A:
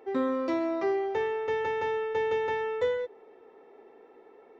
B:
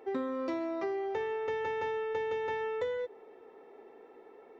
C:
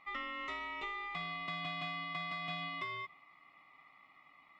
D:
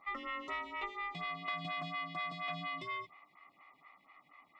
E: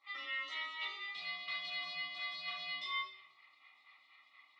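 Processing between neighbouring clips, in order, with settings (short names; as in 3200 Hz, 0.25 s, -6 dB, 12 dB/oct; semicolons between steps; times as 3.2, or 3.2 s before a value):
compressor, threshold -31 dBFS, peak gain reduction 8 dB
dynamic EQ 1700 Hz, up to +7 dB, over -54 dBFS, Q 1.2; ring modulator 1600 Hz; gain -5.5 dB
photocell phaser 4.2 Hz; gain +4 dB
band-pass 4000 Hz, Q 3; shoebox room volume 120 m³, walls mixed, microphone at 2.2 m; gain +5.5 dB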